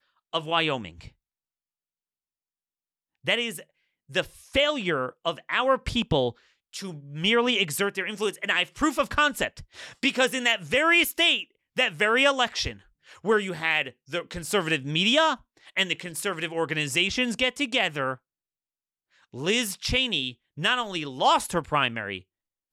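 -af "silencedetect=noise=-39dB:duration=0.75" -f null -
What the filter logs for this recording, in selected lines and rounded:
silence_start: 1.08
silence_end: 3.25 | silence_duration: 2.17
silence_start: 18.15
silence_end: 19.34 | silence_duration: 1.19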